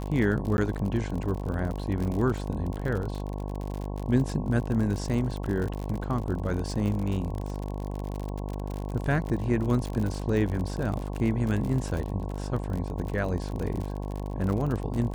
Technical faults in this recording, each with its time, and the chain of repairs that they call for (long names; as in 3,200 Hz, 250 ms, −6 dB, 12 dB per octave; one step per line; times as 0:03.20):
mains buzz 50 Hz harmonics 22 −33 dBFS
surface crackle 53 per second −31 dBFS
0:00.57–0:00.58: drop-out 11 ms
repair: click removal
hum removal 50 Hz, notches 22
repair the gap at 0:00.57, 11 ms